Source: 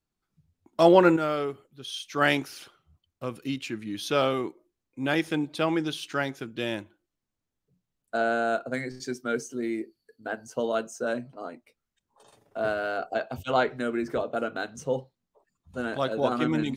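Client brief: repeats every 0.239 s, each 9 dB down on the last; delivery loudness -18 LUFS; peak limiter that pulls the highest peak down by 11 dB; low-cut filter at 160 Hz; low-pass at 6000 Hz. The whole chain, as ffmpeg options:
-af "highpass=160,lowpass=6k,alimiter=limit=-15.5dB:level=0:latency=1,aecho=1:1:239|478|717|956:0.355|0.124|0.0435|0.0152,volume=12dB"

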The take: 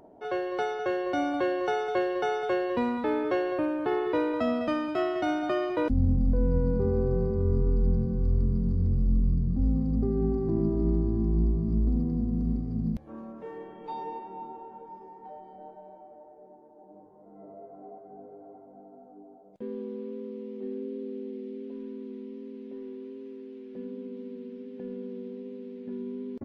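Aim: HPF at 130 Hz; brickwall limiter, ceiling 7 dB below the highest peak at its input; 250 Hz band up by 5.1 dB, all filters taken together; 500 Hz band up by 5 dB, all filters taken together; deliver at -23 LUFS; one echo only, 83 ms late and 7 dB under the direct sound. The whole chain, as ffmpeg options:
-af "highpass=130,equalizer=f=250:t=o:g=5.5,equalizer=f=500:t=o:g=4.5,alimiter=limit=-18dB:level=0:latency=1,aecho=1:1:83:0.447,volume=4dB"

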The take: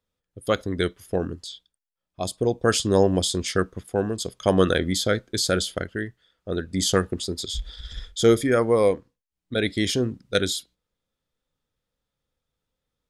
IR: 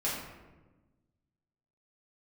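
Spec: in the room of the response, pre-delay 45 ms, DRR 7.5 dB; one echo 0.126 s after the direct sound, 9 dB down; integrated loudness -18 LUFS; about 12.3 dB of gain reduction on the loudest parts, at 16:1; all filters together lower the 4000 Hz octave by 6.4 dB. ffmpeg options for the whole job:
-filter_complex "[0:a]equalizer=f=4k:t=o:g=-8,acompressor=threshold=-24dB:ratio=16,aecho=1:1:126:0.355,asplit=2[a][b];[1:a]atrim=start_sample=2205,adelay=45[c];[b][c]afir=irnorm=-1:irlink=0,volume=-14dB[d];[a][d]amix=inputs=2:normalize=0,volume=12dB"

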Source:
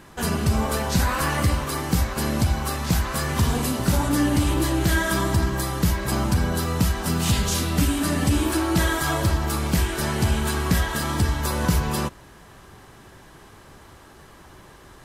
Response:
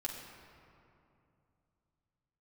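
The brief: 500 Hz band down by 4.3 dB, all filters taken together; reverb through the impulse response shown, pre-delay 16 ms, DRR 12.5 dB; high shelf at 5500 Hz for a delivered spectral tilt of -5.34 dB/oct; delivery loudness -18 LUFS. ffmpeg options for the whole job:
-filter_complex "[0:a]equalizer=f=500:t=o:g=-6,highshelf=f=5.5k:g=-7.5,asplit=2[a][b];[1:a]atrim=start_sample=2205,adelay=16[c];[b][c]afir=irnorm=-1:irlink=0,volume=-13.5dB[d];[a][d]amix=inputs=2:normalize=0,volume=6dB"

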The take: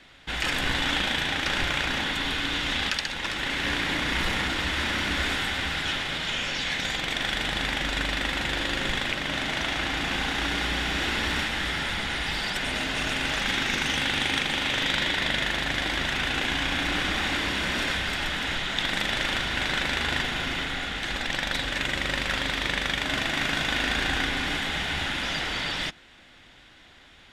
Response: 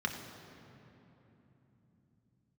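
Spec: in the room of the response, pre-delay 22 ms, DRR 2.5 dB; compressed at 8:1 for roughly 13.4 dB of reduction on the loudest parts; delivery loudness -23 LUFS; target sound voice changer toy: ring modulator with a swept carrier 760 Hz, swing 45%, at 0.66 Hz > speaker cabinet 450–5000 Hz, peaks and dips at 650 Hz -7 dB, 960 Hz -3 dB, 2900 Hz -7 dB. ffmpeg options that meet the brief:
-filter_complex "[0:a]acompressor=threshold=-37dB:ratio=8,asplit=2[a][b];[1:a]atrim=start_sample=2205,adelay=22[c];[b][c]afir=irnorm=-1:irlink=0,volume=-8dB[d];[a][d]amix=inputs=2:normalize=0,aeval=exprs='val(0)*sin(2*PI*760*n/s+760*0.45/0.66*sin(2*PI*0.66*n/s))':c=same,highpass=450,equalizer=f=650:t=q:w=4:g=-7,equalizer=f=960:t=q:w=4:g=-3,equalizer=f=2.9k:t=q:w=4:g=-7,lowpass=f=5k:w=0.5412,lowpass=f=5k:w=1.3066,volume=19dB"

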